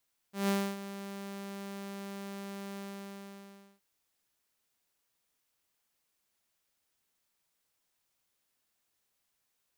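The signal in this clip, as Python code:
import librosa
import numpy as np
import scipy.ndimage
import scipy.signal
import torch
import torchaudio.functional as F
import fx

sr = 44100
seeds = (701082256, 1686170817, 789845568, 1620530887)

y = fx.adsr_tone(sr, wave='saw', hz=198.0, attack_ms=154.0, decay_ms=276.0, sustain_db=-14.0, held_s=2.45, release_ms=1020.0, level_db=-23.5)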